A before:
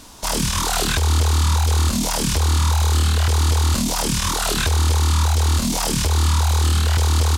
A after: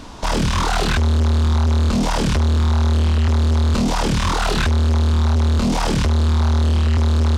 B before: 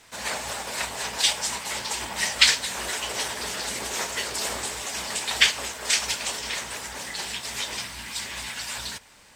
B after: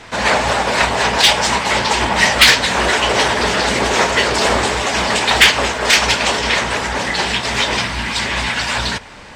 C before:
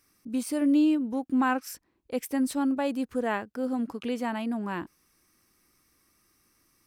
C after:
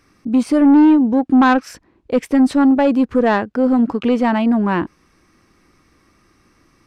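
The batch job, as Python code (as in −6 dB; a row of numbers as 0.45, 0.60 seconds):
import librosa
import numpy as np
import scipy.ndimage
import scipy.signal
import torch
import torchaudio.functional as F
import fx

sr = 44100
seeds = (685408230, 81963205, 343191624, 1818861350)

y = fx.spacing_loss(x, sr, db_at_10k=20)
y = 10.0 ** (-23.5 / 20.0) * np.tanh(y / 10.0 ** (-23.5 / 20.0))
y = y * 10.0 ** (-16 / 20.0) / np.sqrt(np.mean(np.square(y)))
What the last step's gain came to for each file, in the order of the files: +9.5, +20.5, +17.0 decibels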